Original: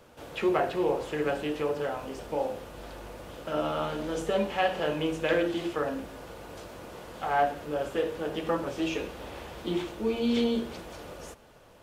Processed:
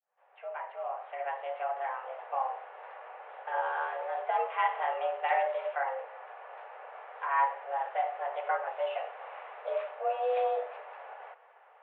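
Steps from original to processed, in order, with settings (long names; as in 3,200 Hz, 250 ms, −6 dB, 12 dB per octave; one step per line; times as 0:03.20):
fade in at the beginning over 2.14 s
single-sideband voice off tune +260 Hz 210–2,300 Hz
level −2 dB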